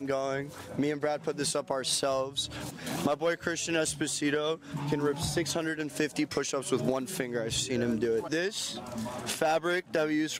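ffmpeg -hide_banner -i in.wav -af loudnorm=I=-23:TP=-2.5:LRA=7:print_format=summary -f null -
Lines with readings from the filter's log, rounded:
Input Integrated:    -30.6 LUFS
Input True Peak:     -13.9 dBTP
Input LRA:             0.7 LU
Input Threshold:     -40.6 LUFS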